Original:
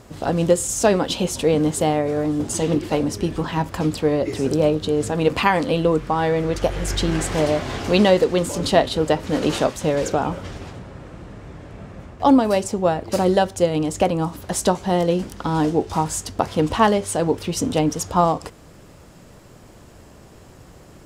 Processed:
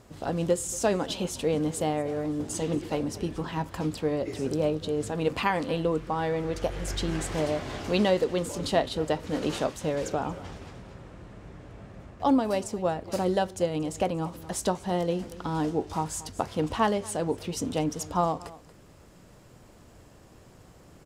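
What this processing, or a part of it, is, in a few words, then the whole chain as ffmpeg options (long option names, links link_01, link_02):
ducked delay: -filter_complex "[0:a]asplit=3[link_01][link_02][link_03];[link_02]adelay=232,volume=-6dB[link_04];[link_03]apad=whole_len=938783[link_05];[link_04][link_05]sidechaincompress=threshold=-30dB:ratio=8:attack=9.7:release=640[link_06];[link_01][link_06]amix=inputs=2:normalize=0,volume=-8.5dB"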